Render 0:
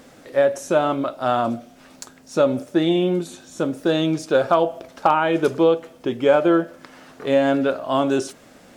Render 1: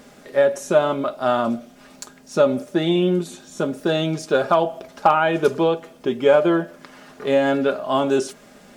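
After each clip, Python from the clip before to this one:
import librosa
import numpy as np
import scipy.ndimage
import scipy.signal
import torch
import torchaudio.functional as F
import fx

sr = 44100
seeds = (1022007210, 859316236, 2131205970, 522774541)

y = x + 0.46 * np.pad(x, (int(4.9 * sr / 1000.0), 0))[:len(x)]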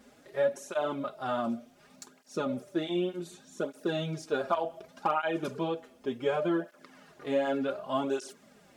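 y = fx.flanger_cancel(x, sr, hz=0.67, depth_ms=6.9)
y = F.gain(torch.from_numpy(y), -8.5).numpy()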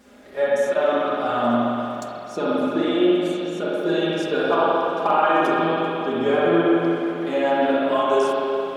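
y = fx.peak_eq(x, sr, hz=140.0, db=-14.5, octaves=0.21)
y = fx.rev_spring(y, sr, rt60_s=3.2, pass_ms=(42, 59), chirp_ms=25, drr_db=-7.5)
y = F.gain(torch.from_numpy(y), 4.5).numpy()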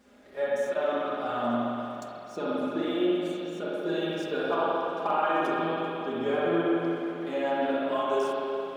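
y = scipy.signal.medfilt(x, 3)
y = F.gain(torch.from_numpy(y), -8.0).numpy()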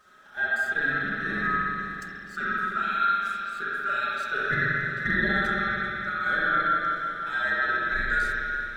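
y = fx.band_swap(x, sr, width_hz=1000)
y = F.gain(torch.from_numpy(y), 1.5).numpy()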